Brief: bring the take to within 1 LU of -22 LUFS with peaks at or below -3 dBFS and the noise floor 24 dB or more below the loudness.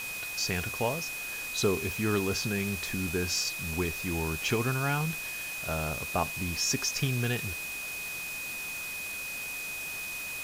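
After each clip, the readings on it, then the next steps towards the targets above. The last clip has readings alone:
steady tone 2.5 kHz; tone level -36 dBFS; noise floor -37 dBFS; noise floor target -55 dBFS; loudness -31.0 LUFS; peak level -15.0 dBFS; loudness target -22.0 LUFS
-> band-stop 2.5 kHz, Q 30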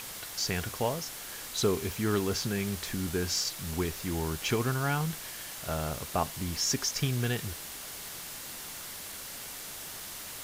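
steady tone not found; noise floor -42 dBFS; noise floor target -57 dBFS
-> noise reduction 15 dB, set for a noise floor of -42 dBFS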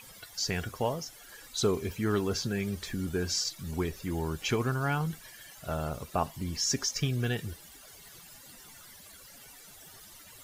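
noise floor -52 dBFS; noise floor target -56 dBFS
-> noise reduction 6 dB, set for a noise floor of -52 dBFS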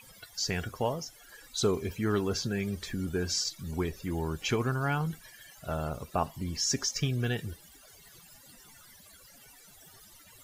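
noise floor -55 dBFS; noise floor target -56 dBFS
-> noise reduction 6 dB, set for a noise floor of -55 dBFS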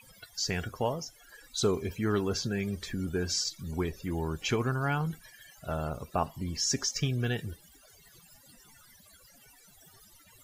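noise floor -59 dBFS; loudness -32.0 LUFS; peak level -16.0 dBFS; loudness target -22.0 LUFS
-> trim +10 dB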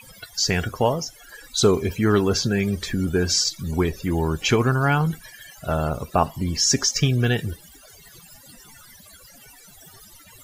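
loudness -22.0 LUFS; peak level -6.0 dBFS; noise floor -49 dBFS

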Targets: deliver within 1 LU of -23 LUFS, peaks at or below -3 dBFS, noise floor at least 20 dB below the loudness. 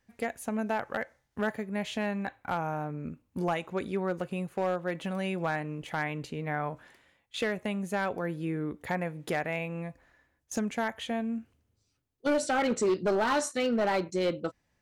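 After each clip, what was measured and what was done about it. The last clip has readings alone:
clipped samples 1.3%; clipping level -22.0 dBFS; loudness -32.0 LUFS; peak level -22.0 dBFS; loudness target -23.0 LUFS
-> clip repair -22 dBFS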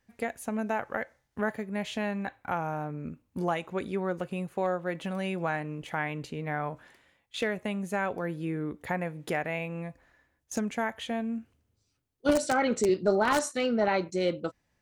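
clipped samples 0.0%; loudness -31.5 LUFS; peak level -13.0 dBFS; loudness target -23.0 LUFS
-> trim +8.5 dB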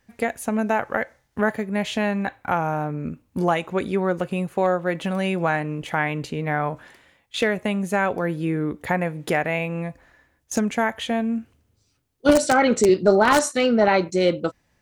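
loudness -23.0 LUFS; peak level -4.5 dBFS; noise floor -67 dBFS

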